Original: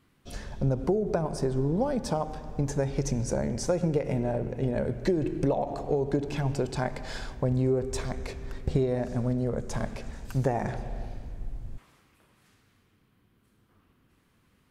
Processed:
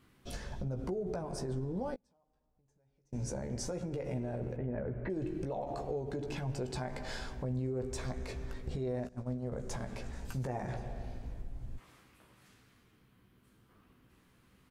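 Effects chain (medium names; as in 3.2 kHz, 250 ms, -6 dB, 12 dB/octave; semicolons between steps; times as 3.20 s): 4.56–5.10 s: low-pass 2.2 kHz 24 dB/octave; 9.07–9.52 s: gate -25 dBFS, range -21 dB; peak limiter -23 dBFS, peak gain reduction 10 dB; compression 2:1, threshold -40 dBFS, peak gain reduction 7.5 dB; 1.94–3.13 s: inverted gate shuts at -34 dBFS, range -36 dB; doubling 16 ms -7 dB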